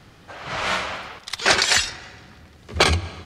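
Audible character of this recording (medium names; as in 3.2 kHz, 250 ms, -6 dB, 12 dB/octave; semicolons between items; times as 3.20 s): noise floor -50 dBFS; spectral tilt -2.0 dB/octave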